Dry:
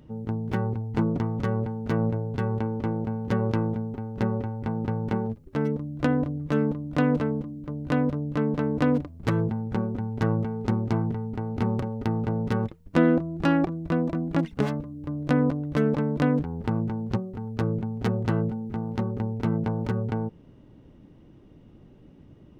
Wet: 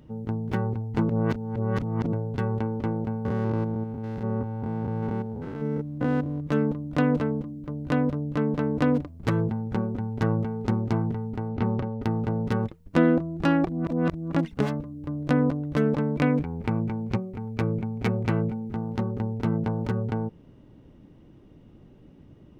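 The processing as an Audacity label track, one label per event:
1.090000	2.130000	reverse
3.250000	6.470000	spectrum averaged block by block every 200 ms
11.480000	12.020000	low-pass filter 3,800 Hz
13.680000	14.320000	reverse
16.160000	18.690000	parametric band 2,300 Hz +11.5 dB 0.26 octaves

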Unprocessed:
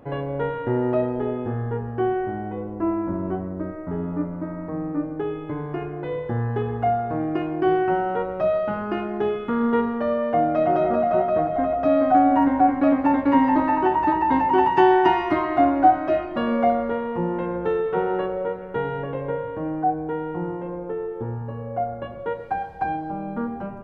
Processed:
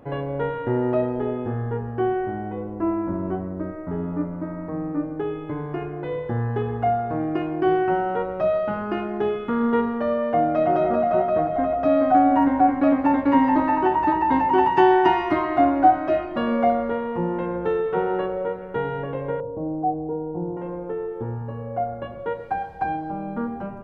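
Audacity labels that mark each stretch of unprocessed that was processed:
19.400000	20.570000	inverse Chebyshev low-pass filter stop band from 2,700 Hz, stop band 60 dB

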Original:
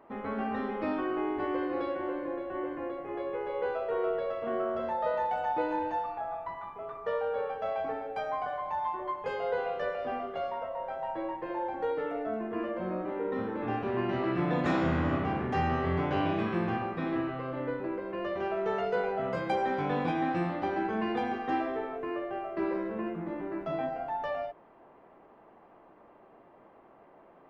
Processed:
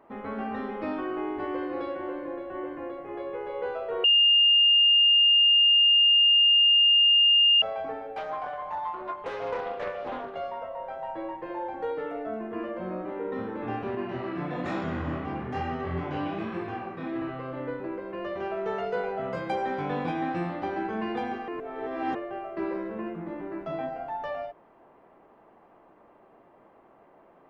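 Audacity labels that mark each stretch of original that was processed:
4.040000	7.620000	beep over 2,820 Hz −16 dBFS
8.170000	10.350000	highs frequency-modulated by the lows depth 0.41 ms
13.950000	17.220000	chorus effect 1.1 Hz, delay 20 ms, depth 7.3 ms
21.480000	22.150000	reverse

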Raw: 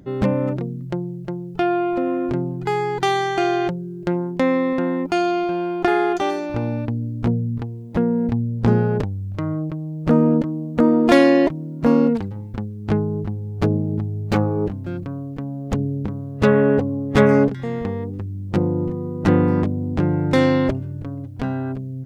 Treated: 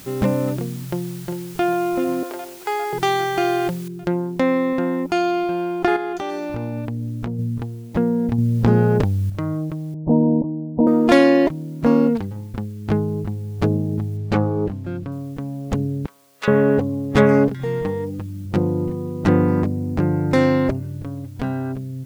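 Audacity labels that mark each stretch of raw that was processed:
0.870000	1.640000	delay throw 400 ms, feedback 75%, level −11 dB
2.230000	2.930000	high-pass filter 440 Hz 24 dB per octave
3.880000	3.880000	noise floor change −43 dB −58 dB
5.960000	7.390000	downward compressor, threshold −22 dBFS
8.380000	9.300000	envelope flattener amount 50%
9.940000	10.870000	Chebyshev low-pass with heavy ripple 1,000 Hz, ripple 3 dB
14.170000	15.120000	high-shelf EQ 6,300 Hz −10 dB
16.060000	16.480000	high-pass filter 1,400 Hz
17.600000	18.460000	comb filter 6.5 ms, depth 74%
19.290000	20.850000	parametric band 3,300 Hz −6 dB 0.42 octaves

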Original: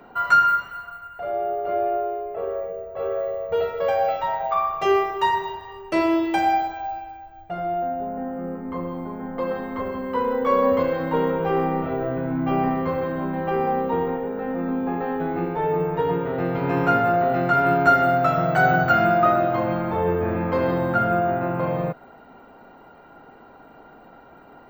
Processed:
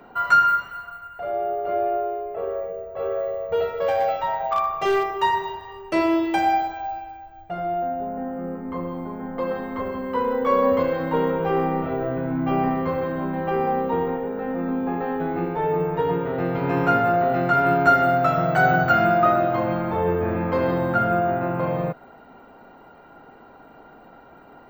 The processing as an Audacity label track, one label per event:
3.590000	5.080000	gain into a clipping stage and back gain 15.5 dB

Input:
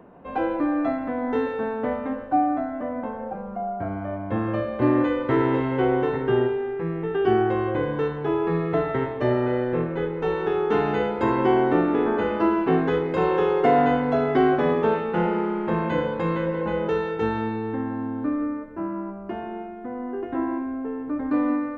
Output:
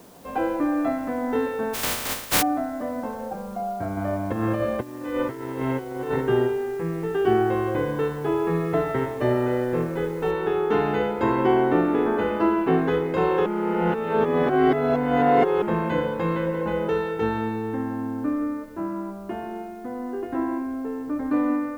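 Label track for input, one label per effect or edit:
1.730000	2.410000	compressing power law on the bin magnitudes exponent 0.13
3.970000	6.210000	compressor whose output falls as the input rises −26 dBFS, ratio −0.5
10.310000	10.310000	noise floor change −55 dB −62 dB
13.460000	15.620000	reverse

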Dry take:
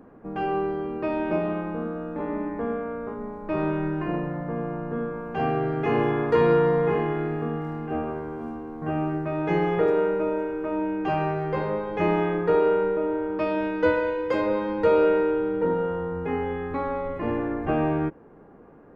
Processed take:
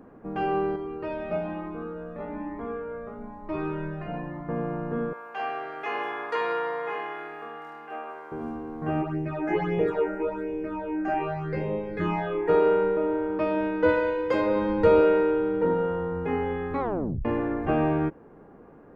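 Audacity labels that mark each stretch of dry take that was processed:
0.760000	4.490000	flanger whose copies keep moving one way rising 1.1 Hz
5.130000	8.320000	high-pass filter 840 Hz
9.010000	12.480000	all-pass phaser stages 8, 2.2 Hz → 0.45 Hz, lowest notch 130–1,400 Hz
13.380000	13.890000	high-shelf EQ 3,600 Hz −9.5 dB
14.560000	15.010000	low-shelf EQ 170 Hz +10 dB
16.800000	16.800000	tape stop 0.45 s

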